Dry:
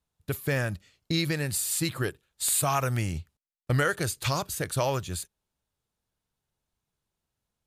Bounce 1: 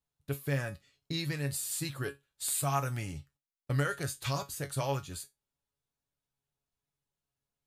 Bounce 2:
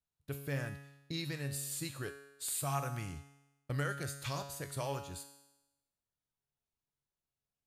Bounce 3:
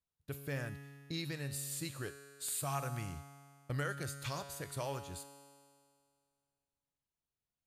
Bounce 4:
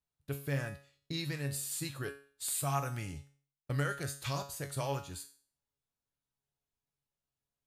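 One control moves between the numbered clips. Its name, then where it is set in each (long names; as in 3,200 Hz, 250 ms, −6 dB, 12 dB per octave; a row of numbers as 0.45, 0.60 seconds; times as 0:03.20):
tuned comb filter, decay: 0.18, 0.96, 2.1, 0.43 seconds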